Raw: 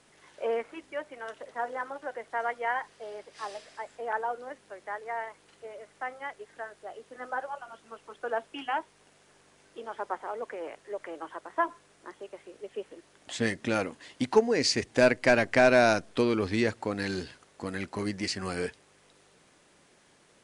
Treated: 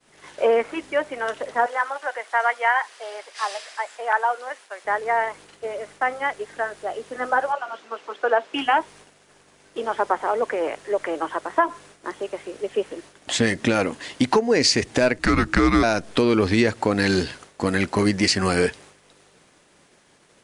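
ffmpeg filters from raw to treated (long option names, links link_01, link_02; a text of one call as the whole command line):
ffmpeg -i in.wav -filter_complex "[0:a]asettb=1/sr,asplit=3[link_01][link_02][link_03];[link_01]atrim=end=1.664[link_04];[link_02]atrim=start=1.66:end=4.85,asetpts=PTS-STARTPTS,afade=type=in:duration=0.004:curve=qsin,afade=type=out:start_time=3.186:duration=0.004:curve=qsin,highpass=800[link_05];[link_03]atrim=start=4.846[link_06];[link_04][link_05]acrossfade=duration=0.004:curve1=hsin:curve2=qsin[link_07];[link_07][link_06]acrossfade=duration=0.004:curve1=qsin:curve2=hsin,asettb=1/sr,asplit=3[link_08][link_09][link_10];[link_08]atrim=end=7.524[link_11];[link_09]atrim=start=7.52:end=8.54,asetpts=PTS-STARTPTS,afade=type=in:duration=0.004:curve=qsin,afade=type=out:start_time=1.016:duration=0.004:curve=qsin,highpass=340,lowpass=5400[link_12];[link_10]atrim=start=8.536[link_13];[link_11][link_12]acrossfade=duration=0.004:curve1=hsin:curve2=qsin[link_14];[link_14][link_13]acrossfade=duration=0.004:curve1=qsin:curve2=hsin,asplit=3[link_15][link_16][link_17];[link_15]afade=type=out:start_time=15.18:duration=0.02[link_18];[link_16]afreqshift=-320,afade=type=in:start_time=15.18:duration=0.02,afade=type=out:start_time=15.82:duration=0.02[link_19];[link_17]afade=type=in:start_time=15.82:duration=0.02[link_20];[link_18][link_19][link_20]amix=inputs=3:normalize=0,agate=range=-33dB:threshold=-54dB:ratio=3:detection=peak,acompressor=threshold=-27dB:ratio=6,alimiter=level_in=19.5dB:limit=-1dB:release=50:level=0:latency=1,volume=-6dB" out.wav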